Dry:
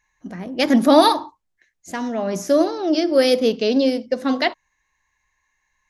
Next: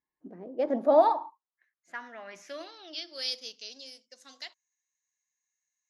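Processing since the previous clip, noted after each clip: band-pass sweep 310 Hz -> 7.1 kHz, 0.03–3.79 s; trim -4.5 dB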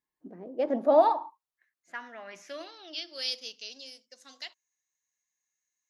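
dynamic bell 2.8 kHz, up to +5 dB, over -57 dBFS, Q 4.9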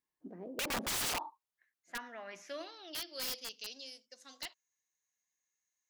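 integer overflow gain 27.5 dB; trim -2.5 dB

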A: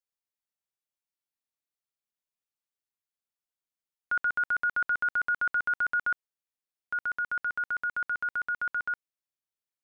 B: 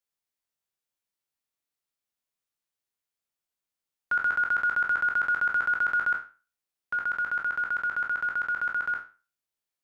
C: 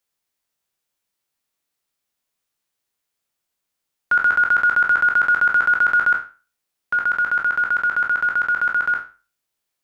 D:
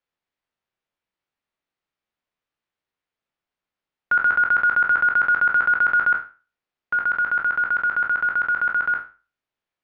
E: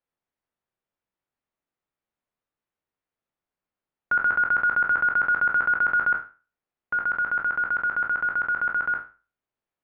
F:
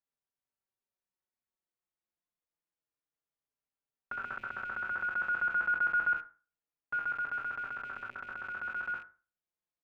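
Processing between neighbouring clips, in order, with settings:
spectral sustain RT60 0.34 s; trim +2 dB
hum notches 50/100 Hz; trim +9 dB
low-pass 2.8 kHz 12 dB/octave; trim -1.5 dB
treble shelf 2.1 kHz -11 dB
rattle on loud lows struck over -55 dBFS, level -34 dBFS; endless flanger 4.6 ms -0.27 Hz; trim -6.5 dB

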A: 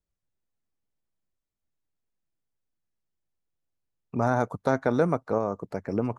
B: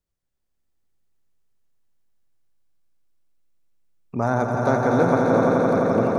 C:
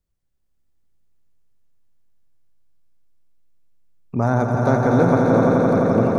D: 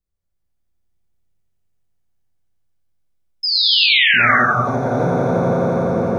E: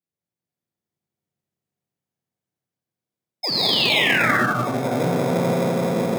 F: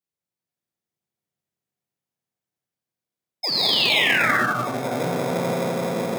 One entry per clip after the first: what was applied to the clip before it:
echo with a slow build-up 86 ms, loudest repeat 5, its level -5.5 dB; trim +2 dB
bass shelf 240 Hz +8 dB
painted sound fall, 3.43–4.36 s, 1.1–5.2 kHz -12 dBFS; gated-style reverb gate 400 ms flat, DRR -5 dB; trim -7.5 dB
in parallel at -5 dB: sample-and-hold 30×; on the sum: high-pass 130 Hz 24 dB/octave; trim -6 dB
bass shelf 480 Hz -6 dB

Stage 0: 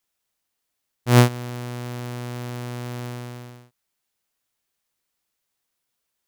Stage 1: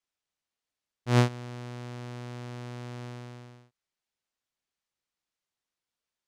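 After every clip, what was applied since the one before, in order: low-pass 6.9 kHz 12 dB/octave; trim -8 dB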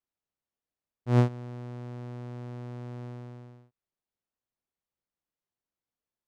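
tilt shelf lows +7 dB, about 1.4 kHz; trim -6 dB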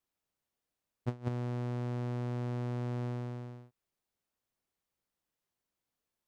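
compressor with a negative ratio -31 dBFS, ratio -0.5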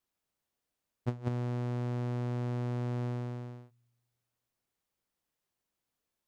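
feedback comb 120 Hz, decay 1.4 s, harmonics all, mix 40%; trim +5.5 dB

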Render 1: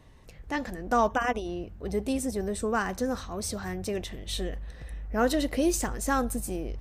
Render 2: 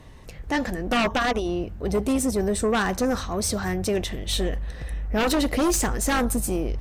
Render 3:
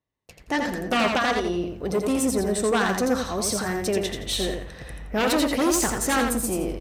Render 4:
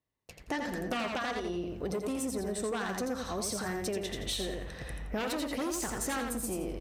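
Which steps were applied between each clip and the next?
sine folder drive 9 dB, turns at -13 dBFS; trim -4.5 dB
high-pass 150 Hz 6 dB/octave; gate -43 dBFS, range -36 dB; on a send: feedback delay 85 ms, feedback 26%, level -4.5 dB
compression, threshold -29 dBFS, peak gain reduction 11 dB; trim -2.5 dB

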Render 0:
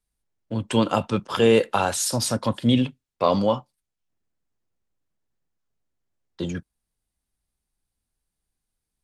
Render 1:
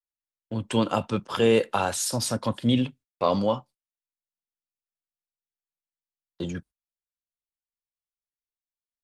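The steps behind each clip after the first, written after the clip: gate -44 dBFS, range -26 dB; trim -3 dB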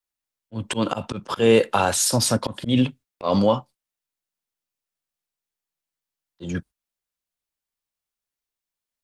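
slow attack 154 ms; in parallel at -2 dB: peak limiter -17 dBFS, peak gain reduction 8 dB; on the sum: trim +2 dB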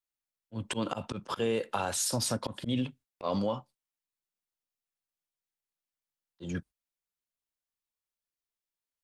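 compression 4:1, threshold -20 dBFS, peak gain reduction 8.5 dB; trim -7 dB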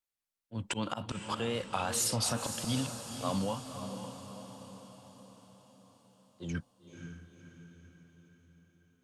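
wow and flutter 79 cents; dynamic bell 400 Hz, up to -7 dB, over -43 dBFS, Q 1.1; echo that smears into a reverb 518 ms, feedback 54%, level -8 dB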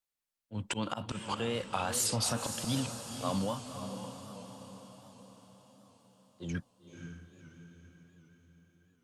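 warped record 78 rpm, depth 100 cents

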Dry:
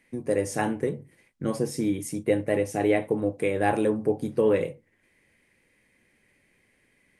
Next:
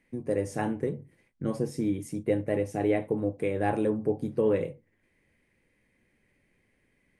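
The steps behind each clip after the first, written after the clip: tilt EQ -1.5 dB/octave; trim -5 dB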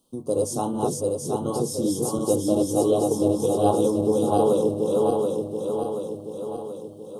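backward echo that repeats 365 ms, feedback 74%, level -1 dB; elliptic band-stop 1.2–3.3 kHz, stop band 50 dB; tilt EQ +2.5 dB/octave; trim +7 dB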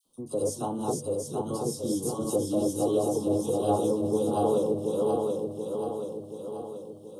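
phase dispersion lows, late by 56 ms, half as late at 1.5 kHz; trim -5 dB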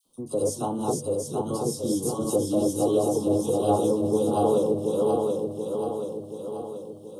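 Butterworth band-stop 1.8 kHz, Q 4; trim +3 dB

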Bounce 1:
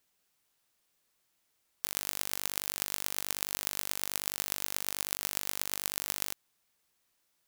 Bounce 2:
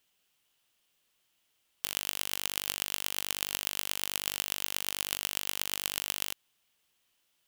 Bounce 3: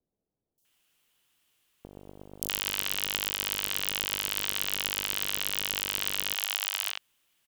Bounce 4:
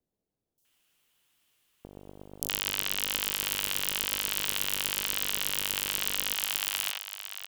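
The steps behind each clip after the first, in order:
peaking EQ 3 kHz +9.5 dB 0.47 oct
three bands offset in time lows, highs, mids 580/650 ms, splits 620/5000 Hz; vibrato 0.97 Hz 12 cents; trim +4 dB
delay 573 ms -9.5 dB

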